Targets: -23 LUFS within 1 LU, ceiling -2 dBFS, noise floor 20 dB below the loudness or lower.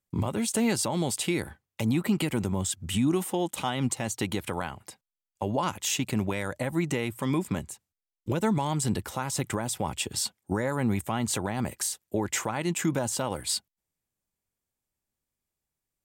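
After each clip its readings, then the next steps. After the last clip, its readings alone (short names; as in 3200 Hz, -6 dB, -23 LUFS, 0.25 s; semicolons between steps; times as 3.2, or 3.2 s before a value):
loudness -29.0 LUFS; peak -16.0 dBFS; loudness target -23.0 LUFS
-> gain +6 dB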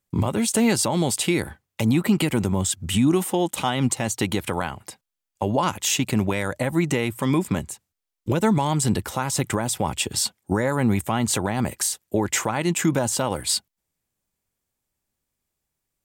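loudness -23.0 LUFS; peak -10.0 dBFS; noise floor -84 dBFS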